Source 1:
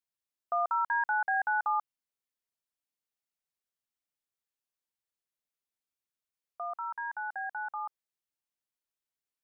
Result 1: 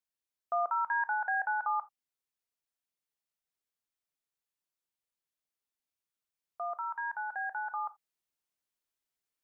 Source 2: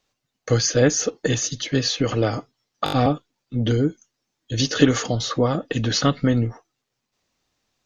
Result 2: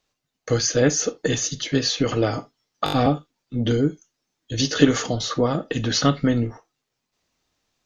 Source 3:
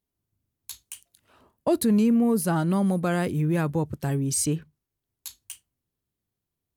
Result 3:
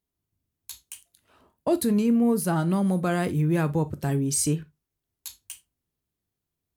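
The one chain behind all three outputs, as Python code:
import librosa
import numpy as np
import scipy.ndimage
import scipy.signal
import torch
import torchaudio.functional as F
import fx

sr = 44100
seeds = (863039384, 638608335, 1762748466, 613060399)

p1 = fx.rev_gated(x, sr, seeds[0], gate_ms=100, shape='falling', drr_db=11.5)
p2 = fx.rider(p1, sr, range_db=3, speed_s=2.0)
p3 = p1 + F.gain(torch.from_numpy(p2), 3.0).numpy()
y = F.gain(torch.from_numpy(p3), -8.0).numpy()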